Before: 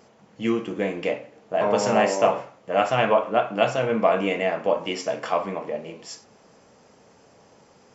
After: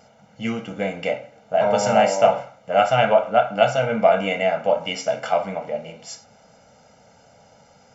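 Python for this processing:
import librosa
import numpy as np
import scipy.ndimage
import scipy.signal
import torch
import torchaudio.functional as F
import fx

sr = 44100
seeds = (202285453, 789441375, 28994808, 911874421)

y = x + 0.82 * np.pad(x, (int(1.4 * sr / 1000.0), 0))[:len(x)]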